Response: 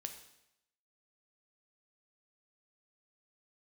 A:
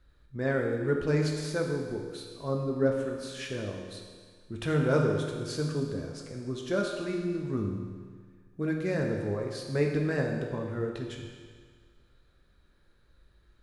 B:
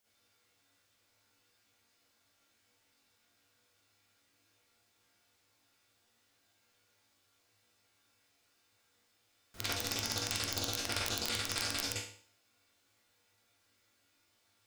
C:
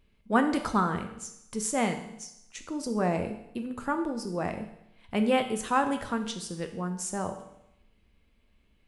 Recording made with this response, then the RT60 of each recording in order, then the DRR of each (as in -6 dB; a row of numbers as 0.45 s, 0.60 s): C; 1.7 s, 0.50 s, 0.80 s; 0.0 dB, -10.0 dB, 6.0 dB